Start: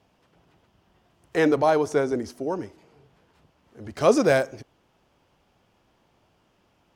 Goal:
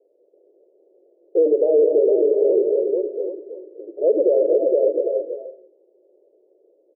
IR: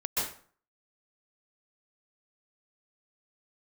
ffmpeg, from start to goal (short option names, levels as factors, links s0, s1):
-filter_complex "[0:a]asoftclip=type=tanh:threshold=0.141,asuperpass=centerf=450:order=8:qfactor=1.9,aecho=1:1:49|349|460|788:0.2|0.133|0.596|0.282,asplit=2[s0][s1];[1:a]atrim=start_sample=2205,adelay=104[s2];[s1][s2]afir=irnorm=-1:irlink=0,volume=0.224[s3];[s0][s3]amix=inputs=2:normalize=0,alimiter=level_in=9.44:limit=0.891:release=50:level=0:latency=1,volume=0.398"